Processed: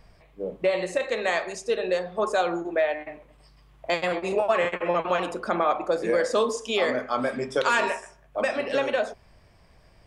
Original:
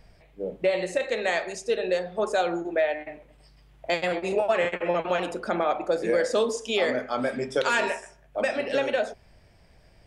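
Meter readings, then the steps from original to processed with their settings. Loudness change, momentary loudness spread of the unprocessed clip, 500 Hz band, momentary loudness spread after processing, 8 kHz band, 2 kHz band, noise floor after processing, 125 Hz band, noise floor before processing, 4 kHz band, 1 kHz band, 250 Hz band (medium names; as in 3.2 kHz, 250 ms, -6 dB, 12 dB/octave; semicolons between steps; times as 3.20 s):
+0.5 dB, 6 LU, +0.5 dB, 6 LU, 0.0 dB, +0.5 dB, -57 dBFS, 0.0 dB, -57 dBFS, 0.0 dB, +2.5 dB, 0.0 dB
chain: peaking EQ 1.1 kHz +8 dB 0.36 oct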